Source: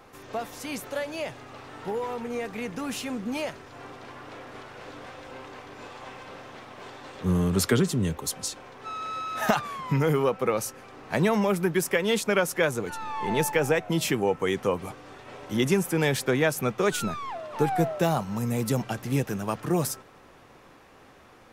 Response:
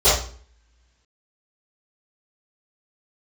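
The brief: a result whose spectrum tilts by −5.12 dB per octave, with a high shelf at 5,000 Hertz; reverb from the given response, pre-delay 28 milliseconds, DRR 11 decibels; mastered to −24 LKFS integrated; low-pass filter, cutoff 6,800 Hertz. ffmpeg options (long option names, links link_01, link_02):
-filter_complex "[0:a]lowpass=6800,highshelf=frequency=5000:gain=4.5,asplit=2[link_01][link_02];[1:a]atrim=start_sample=2205,adelay=28[link_03];[link_02][link_03]afir=irnorm=-1:irlink=0,volume=-33.5dB[link_04];[link_01][link_04]amix=inputs=2:normalize=0,volume=2.5dB"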